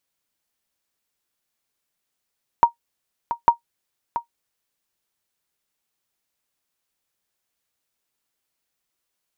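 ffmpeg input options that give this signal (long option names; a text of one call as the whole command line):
ffmpeg -f lavfi -i "aevalsrc='0.668*(sin(2*PI*939*mod(t,0.85))*exp(-6.91*mod(t,0.85)/0.11)+0.266*sin(2*PI*939*max(mod(t,0.85)-0.68,0))*exp(-6.91*max(mod(t,0.85)-0.68,0)/0.11))':duration=1.7:sample_rate=44100" out.wav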